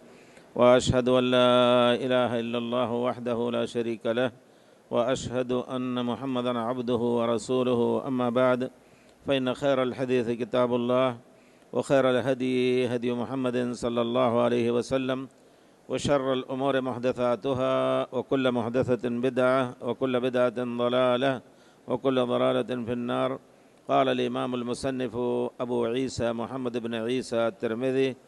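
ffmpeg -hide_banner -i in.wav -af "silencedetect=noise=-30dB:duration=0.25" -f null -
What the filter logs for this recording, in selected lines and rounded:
silence_start: 0.00
silence_end: 0.56 | silence_duration: 0.56
silence_start: 4.28
silence_end: 4.92 | silence_duration: 0.63
silence_start: 8.68
silence_end: 9.28 | silence_duration: 0.60
silence_start: 11.13
silence_end: 11.74 | silence_duration: 0.61
silence_start: 15.24
silence_end: 15.91 | silence_duration: 0.66
silence_start: 21.38
silence_end: 21.88 | silence_duration: 0.50
silence_start: 23.37
silence_end: 23.89 | silence_duration: 0.52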